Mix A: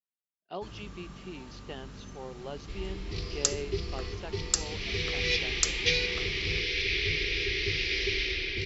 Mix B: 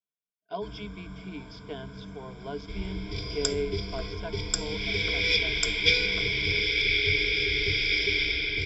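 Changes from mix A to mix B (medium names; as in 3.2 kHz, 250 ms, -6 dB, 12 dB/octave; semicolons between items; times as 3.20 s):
first sound: add treble shelf 4.7 kHz -11.5 dB; master: add rippled EQ curve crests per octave 1.7, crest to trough 18 dB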